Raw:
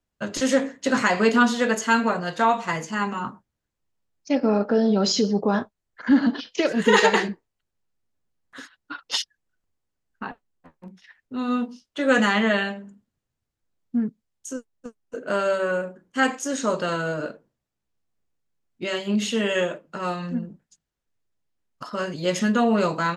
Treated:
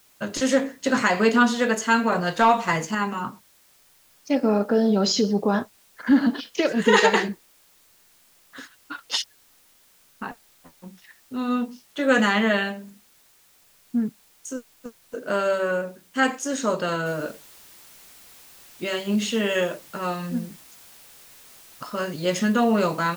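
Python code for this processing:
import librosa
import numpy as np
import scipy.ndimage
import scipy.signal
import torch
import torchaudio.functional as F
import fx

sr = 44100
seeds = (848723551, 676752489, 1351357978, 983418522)

y = fx.leveller(x, sr, passes=1, at=(2.12, 2.95))
y = fx.noise_floor_step(y, sr, seeds[0], at_s=17.06, before_db=-58, after_db=-49, tilt_db=0.0)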